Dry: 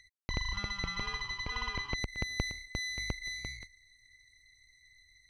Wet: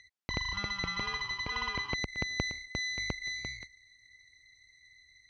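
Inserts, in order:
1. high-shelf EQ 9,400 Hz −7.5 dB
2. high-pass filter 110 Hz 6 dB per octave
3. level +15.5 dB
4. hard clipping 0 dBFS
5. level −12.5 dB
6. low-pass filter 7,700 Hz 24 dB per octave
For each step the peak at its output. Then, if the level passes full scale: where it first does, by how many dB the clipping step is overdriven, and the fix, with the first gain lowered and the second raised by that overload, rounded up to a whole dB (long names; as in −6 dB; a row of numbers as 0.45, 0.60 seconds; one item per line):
−15.5, −17.0, −1.5, −1.5, −14.0, −14.0 dBFS
no step passes full scale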